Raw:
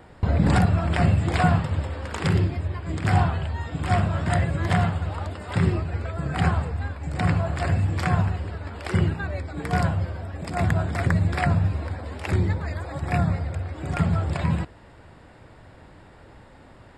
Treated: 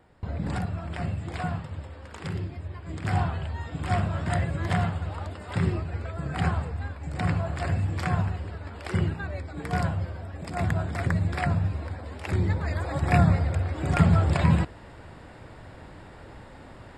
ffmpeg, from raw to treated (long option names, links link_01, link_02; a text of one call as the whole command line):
ffmpeg -i in.wav -af "volume=3dB,afade=type=in:start_time=2.39:duration=1.11:silence=0.446684,afade=type=in:start_time=12.33:duration=0.57:silence=0.446684" out.wav